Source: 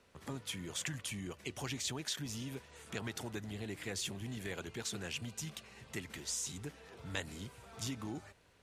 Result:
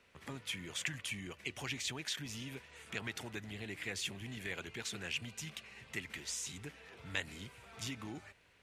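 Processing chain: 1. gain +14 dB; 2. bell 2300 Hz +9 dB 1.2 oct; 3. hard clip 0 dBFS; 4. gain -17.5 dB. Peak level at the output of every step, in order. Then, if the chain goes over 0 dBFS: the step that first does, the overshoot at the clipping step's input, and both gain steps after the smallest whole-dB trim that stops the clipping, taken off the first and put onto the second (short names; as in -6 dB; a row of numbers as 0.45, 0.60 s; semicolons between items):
-7.0, -1.5, -1.5, -19.0 dBFS; no overload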